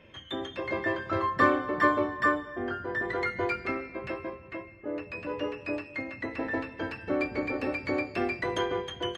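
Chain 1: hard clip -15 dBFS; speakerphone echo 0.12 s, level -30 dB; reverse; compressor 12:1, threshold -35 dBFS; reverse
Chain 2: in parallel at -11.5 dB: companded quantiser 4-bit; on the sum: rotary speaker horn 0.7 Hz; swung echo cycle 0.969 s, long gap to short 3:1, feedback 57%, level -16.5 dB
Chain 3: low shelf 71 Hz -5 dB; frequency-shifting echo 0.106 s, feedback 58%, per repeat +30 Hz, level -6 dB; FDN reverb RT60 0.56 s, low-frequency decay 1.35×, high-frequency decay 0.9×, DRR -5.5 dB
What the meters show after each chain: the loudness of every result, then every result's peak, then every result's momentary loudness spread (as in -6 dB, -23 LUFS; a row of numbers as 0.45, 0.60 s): -39.5, -31.0, -22.0 LUFS; -26.0, -10.5, -3.0 dBFS; 3, 11, 11 LU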